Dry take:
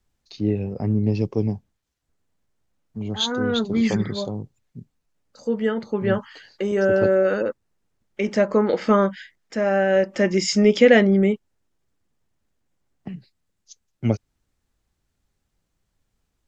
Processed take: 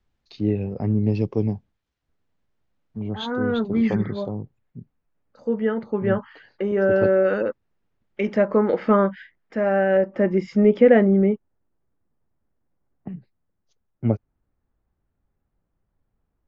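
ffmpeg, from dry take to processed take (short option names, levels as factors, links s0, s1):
-af "asetnsamples=n=441:p=0,asendcmd='2.99 lowpass f 2000;6.91 lowpass f 3200;8.34 lowpass f 2100;9.97 lowpass f 1300',lowpass=3900"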